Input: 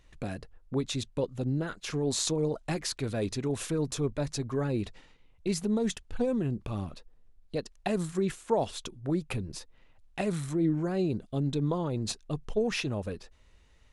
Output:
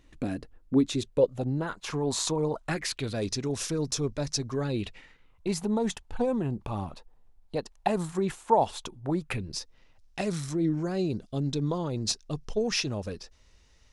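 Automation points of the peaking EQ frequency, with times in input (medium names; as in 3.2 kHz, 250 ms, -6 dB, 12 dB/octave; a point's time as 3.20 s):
peaking EQ +11 dB 0.66 oct
0.85 s 280 Hz
1.58 s 960 Hz
2.57 s 960 Hz
3.20 s 5.5 kHz
4.51 s 5.5 kHz
5.50 s 870 Hz
9.16 s 870 Hz
9.57 s 5.4 kHz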